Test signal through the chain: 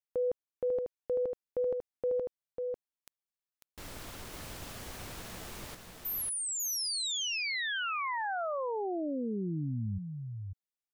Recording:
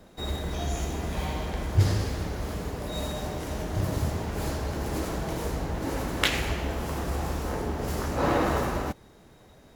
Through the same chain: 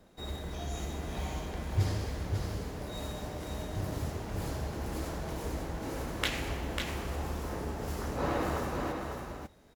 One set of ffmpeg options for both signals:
-af "aecho=1:1:546:0.562,volume=0.422"

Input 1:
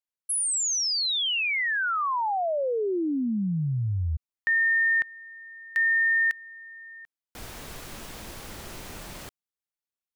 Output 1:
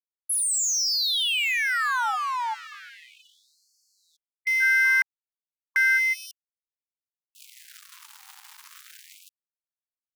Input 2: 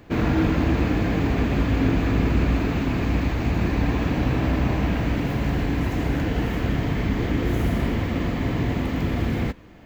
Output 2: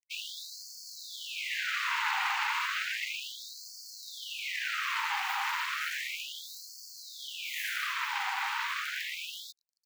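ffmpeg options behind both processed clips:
-af "aeval=exprs='val(0)*sin(2*PI*250*n/s)':c=same,aeval=exprs='sgn(val(0))*max(abs(val(0))-0.01,0)':c=same,afftfilt=real='re*gte(b*sr/1024,750*pow(4300/750,0.5+0.5*sin(2*PI*0.33*pts/sr)))':imag='im*gte(b*sr/1024,750*pow(4300/750,0.5+0.5*sin(2*PI*0.33*pts/sr)))':win_size=1024:overlap=0.75,volume=2.24"

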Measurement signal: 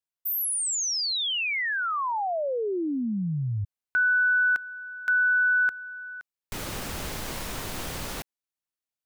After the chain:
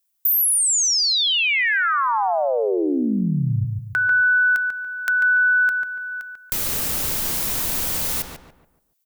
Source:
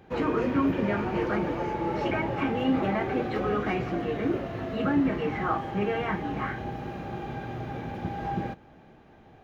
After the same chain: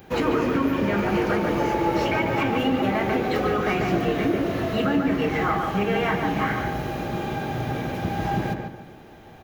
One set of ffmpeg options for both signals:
-filter_complex "[0:a]aemphasis=mode=production:type=75kf,acompressor=threshold=0.0708:ratio=6:attack=4.7:release=553:knee=1:detection=rms,asplit=2[s0][s1];[s1]adelay=143,lowpass=f=2000:p=1,volume=0.668,asplit=2[s2][s3];[s3]adelay=143,lowpass=f=2000:p=1,volume=0.38,asplit=2[s4][s5];[s5]adelay=143,lowpass=f=2000:p=1,volume=0.38,asplit=2[s6][s7];[s7]adelay=143,lowpass=f=2000:p=1,volume=0.38,asplit=2[s8][s9];[s9]adelay=143,lowpass=f=2000:p=1,volume=0.38[s10];[s0][s2][s4][s6][s8][s10]amix=inputs=6:normalize=0,volume=1.88"

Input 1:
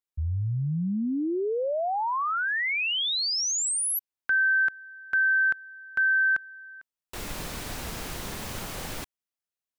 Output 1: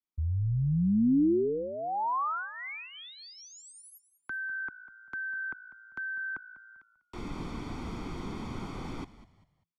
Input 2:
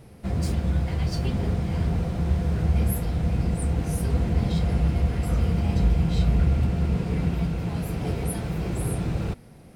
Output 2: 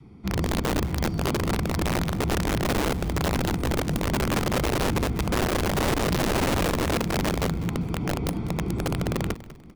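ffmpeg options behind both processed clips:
-filter_complex "[0:a]lowpass=4700,equalizer=f=310:t=o:w=1.7:g=10,aecho=1:1:0.9:0.73,adynamicequalizer=threshold=0.00447:dfrequency=540:dqfactor=3.5:tfrequency=540:tqfactor=3.5:attack=5:release=100:ratio=0.375:range=2:mode=boostabove:tftype=bell,acrossover=split=210|420|1600[s0][s1][s2][s3];[s3]acompressor=threshold=0.00708:ratio=5:attack=0.6:release=33:knee=1:detection=peak[s4];[s0][s1][s2][s4]amix=inputs=4:normalize=0,aeval=exprs='(mod(3.76*val(0)+1,2)-1)/3.76':c=same,asplit=4[s5][s6][s7][s8];[s6]adelay=197,afreqshift=-56,volume=0.158[s9];[s7]adelay=394,afreqshift=-112,volume=0.0525[s10];[s8]adelay=591,afreqshift=-168,volume=0.0172[s11];[s5][s9][s10][s11]amix=inputs=4:normalize=0,volume=0.422"

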